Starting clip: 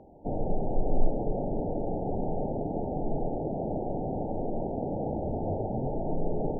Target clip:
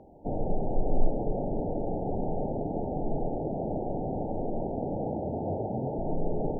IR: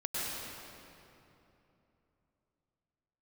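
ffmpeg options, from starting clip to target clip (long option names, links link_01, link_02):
-filter_complex "[0:a]asettb=1/sr,asplit=3[link_01][link_02][link_03];[link_01]atrim=end=5.064[link_04];[link_02]atrim=start=5.06:end=5.99,asetpts=PTS-STARTPTS,afade=type=in:duration=0.004:curve=qsin,afade=type=out:start_time=0.926:duration=0.004:curve=qsin,highpass=85[link_05];[link_03]atrim=start=5.986[link_06];[link_04][link_05]acrossfade=duration=0.004:curve1=hsin:curve2=qsin[link_07];[link_07][link_06]acrossfade=duration=0.004:curve1=qsin:curve2=hsin"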